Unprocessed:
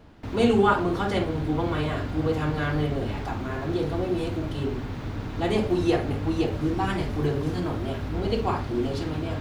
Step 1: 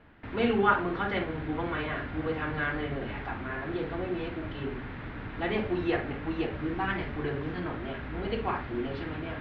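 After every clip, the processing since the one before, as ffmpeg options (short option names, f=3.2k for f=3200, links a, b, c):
-af "lowpass=f=3.5k:w=0.5412,lowpass=f=3.5k:w=1.3066,equalizer=f=1.8k:t=o:w=1.1:g=9.5,bandreject=f=50:t=h:w=6,bandreject=f=100:t=h:w=6,bandreject=f=150:t=h:w=6,volume=-6.5dB"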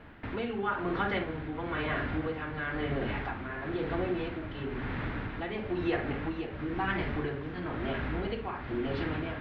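-af "acompressor=threshold=-35dB:ratio=2.5,tremolo=f=1:d=0.53,volume=6dB"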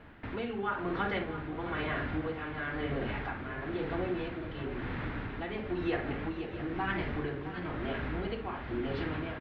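-af "aecho=1:1:663:0.251,volume=-2dB"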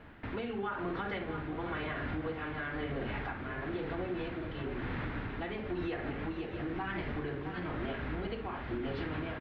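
-af "alimiter=level_in=3.5dB:limit=-24dB:level=0:latency=1:release=124,volume=-3.5dB"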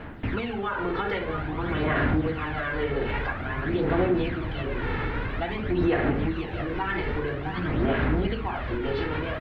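-af "aphaser=in_gain=1:out_gain=1:delay=2.3:decay=0.5:speed=0.5:type=sinusoidal,volume=8dB"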